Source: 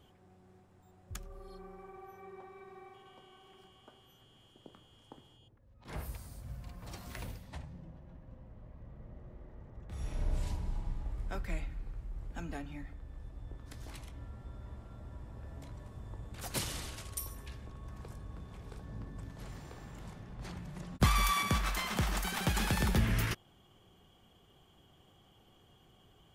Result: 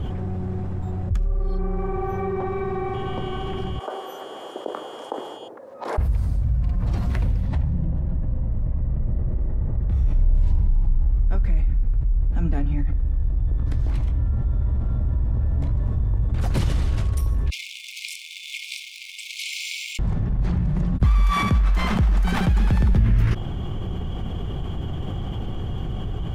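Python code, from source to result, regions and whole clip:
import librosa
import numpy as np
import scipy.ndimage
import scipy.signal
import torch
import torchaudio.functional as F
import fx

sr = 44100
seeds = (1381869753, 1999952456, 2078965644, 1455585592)

y = fx.chain(x, sr, fx.highpass(hz=460.0, slope=24),
    fx.peak_eq(hz=2800.0, db=-12.0, octaves=1.8), at=(3.79, 5.98))
y = fx.chain(y, sr, fx.zero_step(step_db=-52.5),
    fx.brickwall_highpass(low_hz=2100.0), at=(17.5, 19.99))
y = fx.riaa(y, sr, side='playback')
y = fx.env_flatten(y, sr, amount_pct=70)
y = y * 10.0 ** (-4.5 / 20.0)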